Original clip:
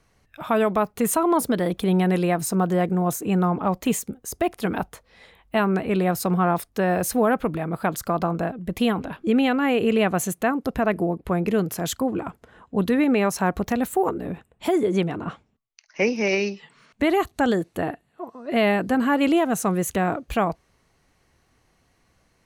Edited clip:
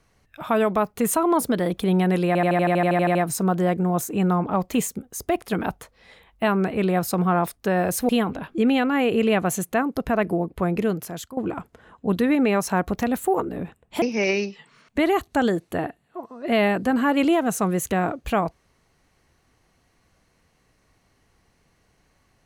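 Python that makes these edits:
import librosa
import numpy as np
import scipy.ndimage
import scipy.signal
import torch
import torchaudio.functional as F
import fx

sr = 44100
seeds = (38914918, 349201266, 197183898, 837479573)

y = fx.edit(x, sr, fx.stutter(start_s=2.27, slice_s=0.08, count=12),
    fx.cut(start_s=7.21, length_s=1.57),
    fx.fade_out_to(start_s=11.46, length_s=0.6, floor_db=-16.0),
    fx.cut(start_s=14.71, length_s=1.35), tone=tone)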